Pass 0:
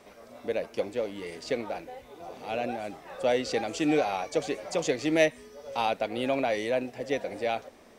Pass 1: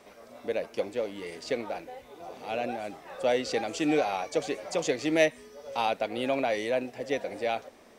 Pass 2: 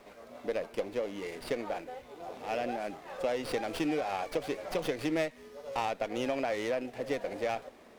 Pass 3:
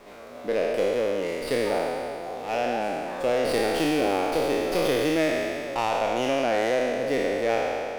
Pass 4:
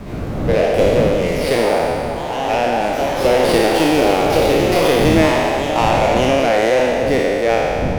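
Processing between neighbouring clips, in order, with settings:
bass shelf 160 Hz -4.5 dB
compression 6:1, threshold -28 dBFS, peak gain reduction 10.5 dB; sliding maximum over 5 samples
spectral sustain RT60 2.51 s; trim +4 dB
wind noise 230 Hz -34 dBFS; ever faster or slower copies 95 ms, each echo +2 st, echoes 2, each echo -6 dB; trim +8.5 dB

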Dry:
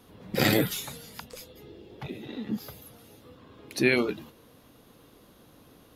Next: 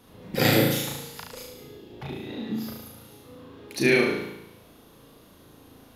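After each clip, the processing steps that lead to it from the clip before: flutter echo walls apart 6.2 m, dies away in 0.85 s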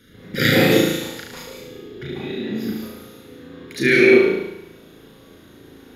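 reverberation RT60 0.45 s, pre-delay 139 ms, DRR 1 dB; trim -2 dB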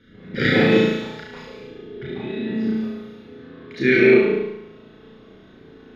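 distance through air 230 m; on a send: flutter echo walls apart 5.4 m, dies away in 0.43 s; on the sum: trim -1 dB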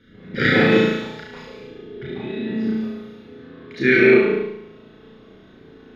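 dynamic bell 1.4 kHz, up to +5 dB, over -37 dBFS, Q 1.6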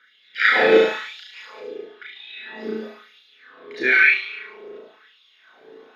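phaser 0.63 Hz, delay 1.4 ms, feedback 27%; LFO high-pass sine 1 Hz 430–3400 Hz; trim -1 dB

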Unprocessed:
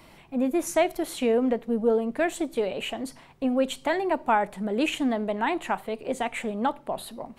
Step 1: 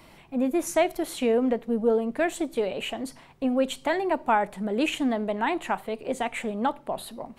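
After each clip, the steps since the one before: no audible change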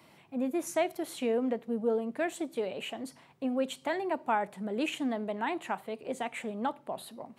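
high-pass 97 Hz 24 dB/octave; trim -6.5 dB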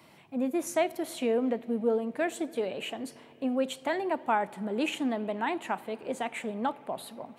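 reverberation RT60 4.8 s, pre-delay 55 ms, DRR 19.5 dB; trim +2 dB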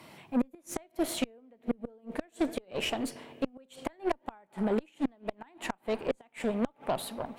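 inverted gate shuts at -22 dBFS, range -33 dB; Chebyshev shaper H 8 -22 dB, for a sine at -20.5 dBFS; trim +4.5 dB

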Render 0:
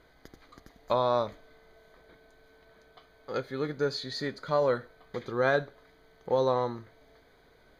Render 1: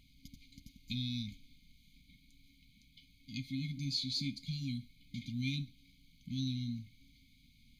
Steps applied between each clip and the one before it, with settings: FFT band-reject 280–2100 Hz; trim +1 dB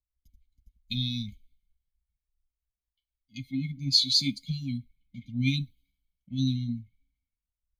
expander on every frequency bin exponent 1.5; three bands expanded up and down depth 100%; trim +7.5 dB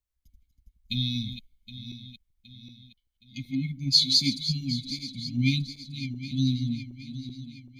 backward echo that repeats 384 ms, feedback 67%, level -11 dB; trim +2 dB

